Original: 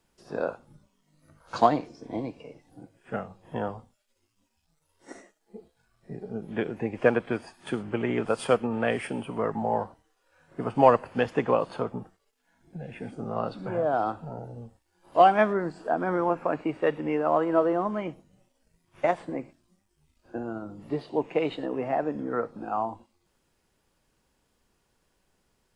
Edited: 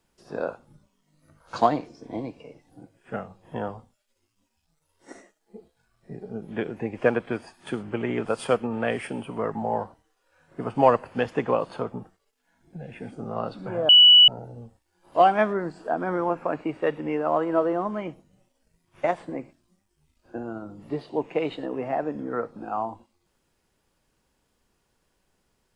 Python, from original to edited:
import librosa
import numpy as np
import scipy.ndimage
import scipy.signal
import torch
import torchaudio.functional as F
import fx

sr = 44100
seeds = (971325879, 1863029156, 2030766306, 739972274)

y = fx.edit(x, sr, fx.bleep(start_s=13.89, length_s=0.39, hz=2950.0, db=-9.0), tone=tone)